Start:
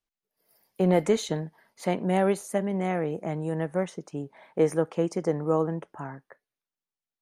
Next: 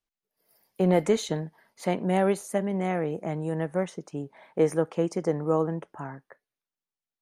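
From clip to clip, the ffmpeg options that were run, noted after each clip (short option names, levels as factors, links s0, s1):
-af anull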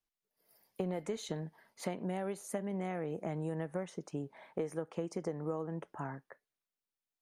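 -af "acompressor=threshold=0.0316:ratio=10,volume=0.708"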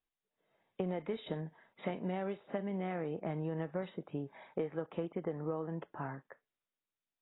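-ar 16000 -c:a aac -b:a 16k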